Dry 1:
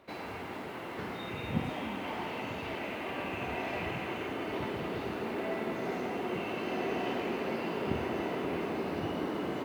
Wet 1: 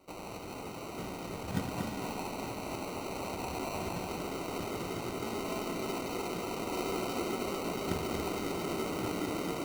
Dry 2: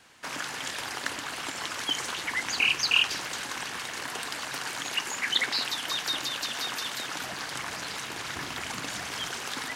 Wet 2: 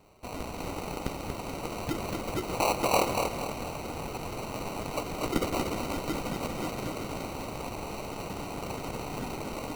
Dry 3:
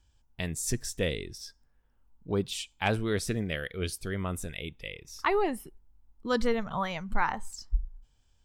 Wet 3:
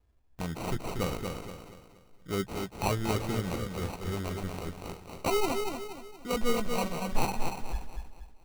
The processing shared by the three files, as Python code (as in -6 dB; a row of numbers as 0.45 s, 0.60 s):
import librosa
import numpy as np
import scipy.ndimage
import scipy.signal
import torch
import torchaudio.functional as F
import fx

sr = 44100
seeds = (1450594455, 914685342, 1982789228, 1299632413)

y = fx.chorus_voices(x, sr, voices=6, hz=0.46, base_ms=14, depth_ms=4.0, mix_pct=30)
y = fx.sample_hold(y, sr, seeds[0], rate_hz=1700.0, jitter_pct=0)
y = fx.echo_feedback(y, sr, ms=236, feedback_pct=40, wet_db=-5.0)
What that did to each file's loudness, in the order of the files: -1.0 LU, -4.0 LU, -1.5 LU